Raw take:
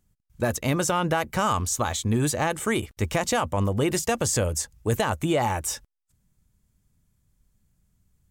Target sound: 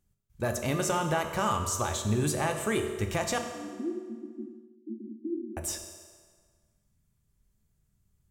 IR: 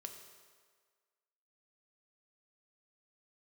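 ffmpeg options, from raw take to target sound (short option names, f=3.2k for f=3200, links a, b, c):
-filter_complex "[0:a]asettb=1/sr,asplit=3[a][b][c];[a]atrim=end=3.384[d];[b]atrim=start=3.38:end=5.57,asetpts=PTS-STARTPTS,afade=t=in:d=0.004:c=qsin,afade=t=out:st=2.186:d=0.004:c=qsin,asuperpass=centerf=280:order=20:qfactor=1.8[e];[c]atrim=start=5.566[f];[d][e]acrossfade=d=0.004:c1=hsin:c2=qsin[g];[g][f]acrossfade=d=0.004:c1=qsin:c2=hsin[h];[1:a]atrim=start_sample=2205[i];[h][i]afir=irnorm=-1:irlink=0"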